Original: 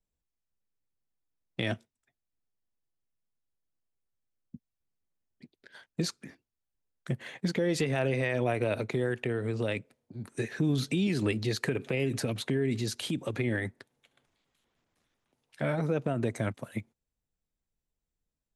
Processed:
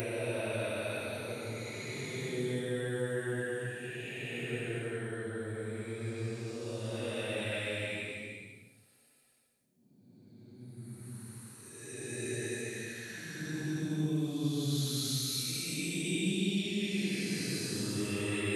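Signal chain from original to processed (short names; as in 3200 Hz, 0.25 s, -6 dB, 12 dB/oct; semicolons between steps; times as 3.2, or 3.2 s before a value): Paulstretch 6.9×, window 0.25 s, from 8.61; pre-emphasis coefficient 0.8; gain +7 dB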